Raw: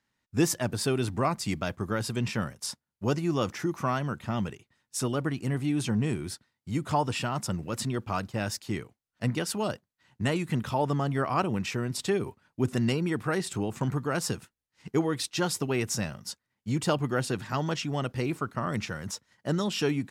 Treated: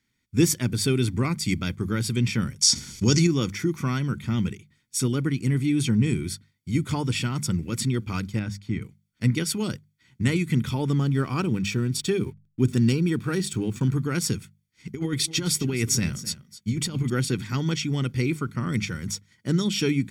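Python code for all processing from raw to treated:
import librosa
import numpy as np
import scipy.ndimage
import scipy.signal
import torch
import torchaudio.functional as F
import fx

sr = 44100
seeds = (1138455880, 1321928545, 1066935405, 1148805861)

y = fx.chain(x, sr, fx.lowpass(hz=10000.0, slope=12),
    fx.peak_eq(hz=5900.0, db=14.0, octaves=1.2),
    fx.env_flatten(amount_pct=70), at=(2.61, 3.27))
y = fx.chain(y, sr, fx.lowpass(hz=1200.0, slope=6),
    fx.peak_eq(hz=390.0, db=-7.5, octaves=0.56), at=(8.39, 8.82))
y = fx.chain(y, sr, fx.notch(hz=2100.0, q=5.5),
    fx.backlash(play_db=-50.0), at=(10.98, 13.95))
y = fx.chain(y, sr, fx.over_compress(threshold_db=-29.0, ratio=-0.5),
    fx.echo_single(ms=259, db=-15.5), at=(14.93, 17.1))
y = fx.band_shelf(y, sr, hz=900.0, db=-13.0, octaves=1.2)
y = fx.hum_notches(y, sr, base_hz=50, count=4)
y = y + 0.59 * np.pad(y, (int(0.9 * sr / 1000.0), 0))[:len(y)]
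y = y * 10.0 ** (4.0 / 20.0)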